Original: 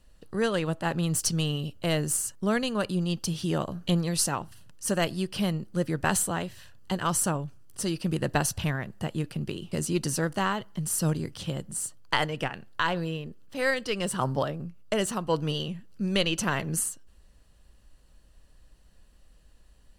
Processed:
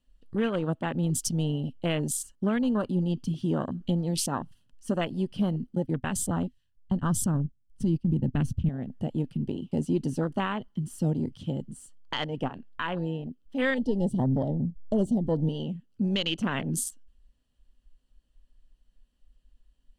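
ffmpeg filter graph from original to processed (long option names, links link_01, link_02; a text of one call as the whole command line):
ffmpeg -i in.wav -filter_complex "[0:a]asettb=1/sr,asplit=3[link_01][link_02][link_03];[link_01]atrim=end=5.754[link_04];[link_02]atrim=start=5.75:end=8.69,asetpts=PTS-STARTPTS,afade=type=in:duration=0.004:curve=qsin,afade=type=out:start_time=2.936:duration=0.004:curve=qsin,agate=range=-17dB:threshold=-34dB:ratio=16:release=100:detection=peak,asubboost=boost=8.5:cutoff=240[link_05];[link_03]atrim=start=8.686[link_06];[link_04][link_05]acrossfade=duration=0.004:curve1=hsin:curve2=qsin[link_07];[link_07][link_06]acrossfade=duration=0.004:curve1=qsin:curve2=hsin,asettb=1/sr,asplit=3[link_08][link_09][link_10];[link_08]atrim=end=13.784[link_11];[link_09]atrim=start=13.78:end=15.49,asetpts=PTS-STARTPTS,afade=type=in:duration=0.004:curve=qsin,afade=type=out:start_time=1.706:duration=0.004:curve=qsin,asuperstop=centerf=1700:order=8:qfactor=0.68,lowshelf=frequency=230:gain=10.5[link_12];[link_10]atrim=start=15.486[link_13];[link_11][link_12]acrossfade=duration=0.004:curve1=hsin:curve2=qsin[link_14];[link_14][link_13]acrossfade=duration=0.004:curve1=qsin:curve2=hsin,afwtdn=0.0251,equalizer=frequency=250:width_type=o:width=0.33:gain=11,equalizer=frequency=3150:width_type=o:width=0.33:gain=9,equalizer=frequency=12500:width_type=o:width=0.33:gain=-5,alimiter=limit=-17.5dB:level=0:latency=1:release=175" out.wav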